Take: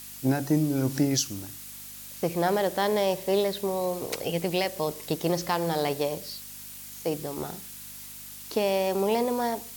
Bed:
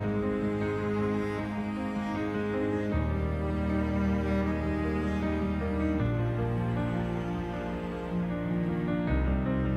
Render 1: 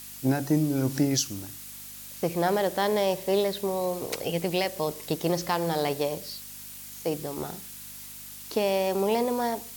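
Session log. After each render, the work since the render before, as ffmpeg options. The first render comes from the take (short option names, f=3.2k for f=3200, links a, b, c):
-af anull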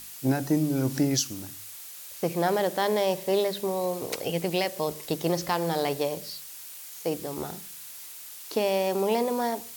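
-af "bandreject=f=50:t=h:w=4,bandreject=f=100:t=h:w=4,bandreject=f=150:t=h:w=4,bandreject=f=200:t=h:w=4,bandreject=f=250:t=h:w=4"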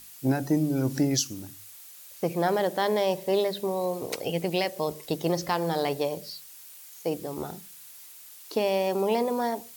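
-af "afftdn=nr=6:nf=-43"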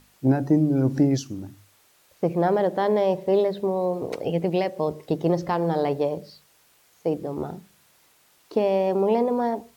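-af "lowpass=f=3.6k:p=1,tiltshelf=f=1.4k:g=5.5"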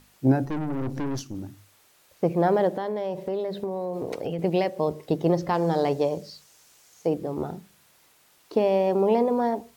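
-filter_complex "[0:a]asettb=1/sr,asplit=3[a][b][c];[a]atrim=end=0.454[d];[b]atrim=start=0.45:end=1.35,asetpts=PTS-STARTPTS,afade=t=in:d=0.004:c=qsin,afade=t=out:st=0.896:d=0.004:c=qsin,aeval=exprs='(tanh(22.4*val(0)+0.6)-tanh(0.6))/22.4':c=same[e];[c]atrim=start=1.346[f];[d][e]acrossfade=d=0.004:c1=hsin:c2=qsin[g];[g][f]acrossfade=d=0.004:c1=qsin:c2=hsin,asettb=1/sr,asplit=3[h][i][j];[h]atrim=end=2.734[k];[i]atrim=start=2.73:end=4.39,asetpts=PTS-STARTPTS,afade=t=in:d=0.004:c=qsin,afade=t=out:st=1.656:d=0.004:c=qsin,acompressor=threshold=-25dB:ratio=6:attack=3.2:release=140:knee=1:detection=peak[l];[j]atrim=start=4.386[m];[k][l]acrossfade=d=0.004:c1=hsin:c2=qsin[n];[n][m]acrossfade=d=0.004:c1=qsin:c2=hsin,asettb=1/sr,asplit=3[o][p][q];[o]atrim=end=5.544[r];[p]atrim=start=5.54:end=7.07,asetpts=PTS-STARTPTS,afade=t=in:d=0.004:c=qsin,afade=t=out:st=1.526:d=0.004:c=qsin,equalizer=f=6.4k:t=o:w=0.94:g=8.5[s];[q]atrim=start=7.066[t];[r][s]acrossfade=d=0.004:c1=hsin:c2=qsin[u];[u][t]acrossfade=d=0.004:c1=qsin:c2=hsin"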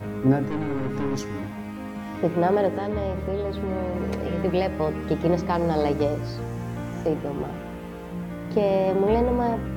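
-filter_complex "[1:a]volume=-2dB[a];[0:a][a]amix=inputs=2:normalize=0"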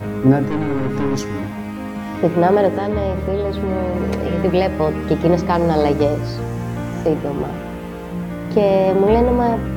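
-af "volume=7dB,alimiter=limit=-3dB:level=0:latency=1"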